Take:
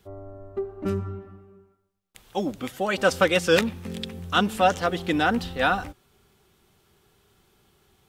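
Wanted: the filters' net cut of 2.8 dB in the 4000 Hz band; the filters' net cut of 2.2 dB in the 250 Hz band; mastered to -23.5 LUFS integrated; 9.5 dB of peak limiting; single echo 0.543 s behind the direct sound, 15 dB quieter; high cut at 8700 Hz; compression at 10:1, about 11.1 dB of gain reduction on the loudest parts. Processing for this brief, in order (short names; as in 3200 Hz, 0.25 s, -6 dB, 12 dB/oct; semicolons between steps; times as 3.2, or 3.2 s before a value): LPF 8700 Hz; bell 250 Hz -3 dB; bell 4000 Hz -3.5 dB; compressor 10:1, threshold -26 dBFS; limiter -25 dBFS; echo 0.543 s -15 dB; gain +13 dB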